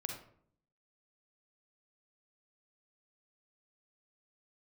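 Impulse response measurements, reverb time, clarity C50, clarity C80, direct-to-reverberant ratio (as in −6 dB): 0.60 s, 4.0 dB, 8.5 dB, 2.0 dB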